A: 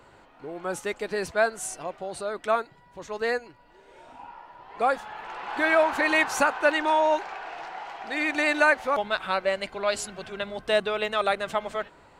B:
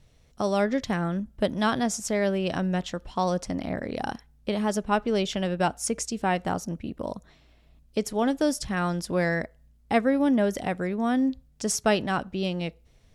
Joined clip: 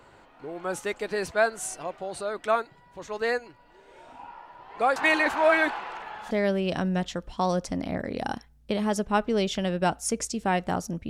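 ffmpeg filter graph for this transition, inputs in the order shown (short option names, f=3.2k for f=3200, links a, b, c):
-filter_complex "[0:a]apad=whole_dur=11.09,atrim=end=11.09,asplit=2[a][b];[a]atrim=end=4.962[c];[b]atrim=start=4.958:end=6.312,asetpts=PTS-STARTPTS,areverse[d];[1:a]atrim=start=2.088:end=6.87[e];[c][d]acrossfade=d=0.004:c1=hsin:c2=hsin[f];[f][e]acrossfade=d=0.004:c1=hsin:c2=hsin"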